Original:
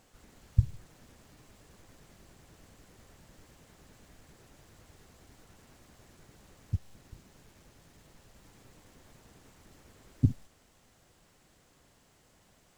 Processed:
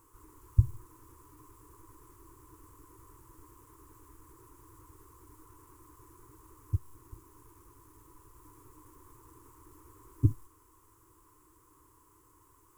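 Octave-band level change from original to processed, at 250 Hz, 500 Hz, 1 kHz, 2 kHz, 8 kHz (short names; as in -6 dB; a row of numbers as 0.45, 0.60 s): -3.5 dB, +1.5 dB, +6.0 dB, n/a, +0.5 dB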